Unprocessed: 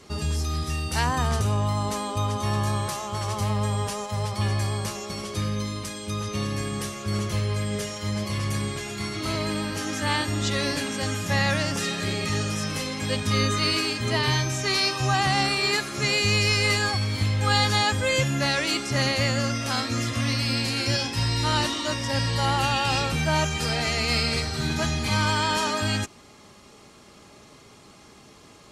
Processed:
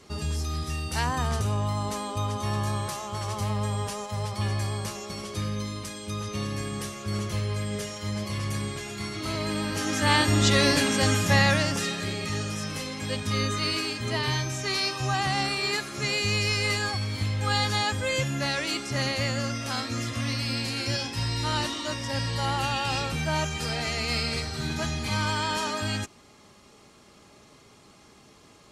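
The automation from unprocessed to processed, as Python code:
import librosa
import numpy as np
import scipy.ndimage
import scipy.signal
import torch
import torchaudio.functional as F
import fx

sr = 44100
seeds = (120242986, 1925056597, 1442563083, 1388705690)

y = fx.gain(x, sr, db=fx.line((9.34, -3.0), (10.32, 5.0), (11.15, 5.0), (12.13, -4.0)))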